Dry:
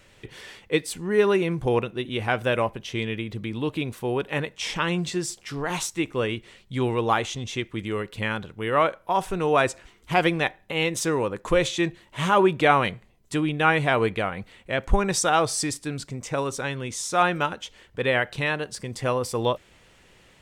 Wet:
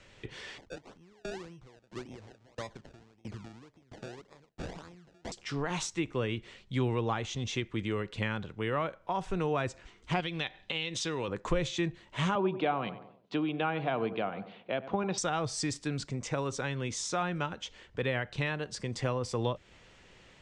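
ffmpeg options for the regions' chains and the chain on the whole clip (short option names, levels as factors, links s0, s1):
-filter_complex "[0:a]asettb=1/sr,asplit=3[s0][s1][s2];[s0]atrim=end=0.584[s3];[s1]atrim=start=0.58:end=5.32,asetpts=PTS-STARTPTS,afade=t=in:d=0.004:c=qsin,afade=t=out:st=4.736:d=0.004:c=qsin,acompressor=threshold=0.0316:ratio=10:attack=3.2:release=140:knee=1:detection=peak,acrusher=samples=29:mix=1:aa=0.000001:lfo=1:lforange=29:lforate=1.8,aeval=exprs='val(0)*pow(10,-30*if(lt(mod(1.5*n/s,1),2*abs(1.5)/1000),1-mod(1.5*n/s,1)/(2*abs(1.5)/1000),(mod(1.5*n/s,1)-2*abs(1.5)/1000)/(1-2*abs(1.5)/1000))/20)':c=same[s4];[s2]atrim=start=5.316[s5];[s3][s4]acrossfade=d=0.004:c1=hsin:c2=qsin[s6];[s6][s5]acrossfade=d=0.004:c1=qsin:c2=hsin,asettb=1/sr,asplit=3[s7][s8][s9];[s7]atrim=end=10.204[s10];[s8]atrim=start=10.2:end=11.28,asetpts=PTS-STARTPTS,afade=t=in:d=0.004:c=qsin,afade=t=out:st=1.076:d=0.004:c=qsin,equalizer=f=3500:t=o:w=1.1:g=14.5,acompressor=threshold=0.0316:ratio=2:attack=3.2:release=140:knee=1:detection=peak[s11];[s9]atrim=start=11.276[s12];[s10][s11]acrossfade=d=0.004:c1=hsin:c2=qsin[s13];[s13][s12]acrossfade=d=0.004:c1=qsin:c2=hsin,asettb=1/sr,asplit=3[s14][s15][s16];[s14]atrim=end=12.354[s17];[s15]atrim=start=12.35:end=15.18,asetpts=PTS-STARTPTS,afade=t=in:d=0.004:c=qsin,afade=t=out:st=2.826:d=0.004:c=qsin,highpass=f=150:w=0.5412,highpass=f=150:w=1.3066,equalizer=f=150:t=q:w=4:g=-6,equalizer=f=710:t=q:w=4:g=6,equalizer=f=1900:t=q:w=4:g=-8,lowpass=f=4000:w=0.5412,lowpass=f=4000:w=1.3066,asplit=2[s18][s19];[s19]adelay=93,lowpass=f=1100:p=1,volume=0.211,asplit=2[s20][s21];[s21]adelay=93,lowpass=f=1100:p=1,volume=0.41,asplit=2[s22][s23];[s23]adelay=93,lowpass=f=1100:p=1,volume=0.41,asplit=2[s24][s25];[s25]adelay=93,lowpass=f=1100:p=1,volume=0.41[s26];[s18][s20][s22][s24][s26]amix=inputs=5:normalize=0,atrim=end_sample=124803[s27];[s16]atrim=start=15.176[s28];[s17][s27]acrossfade=d=0.004:c1=hsin:c2=qsin[s29];[s29][s28]acrossfade=d=0.004:c1=qsin:c2=hsin,lowpass=f=7300:w=0.5412,lowpass=f=7300:w=1.3066,acrossover=split=210[s30][s31];[s31]acompressor=threshold=0.0316:ratio=3[s32];[s30][s32]amix=inputs=2:normalize=0,volume=0.794"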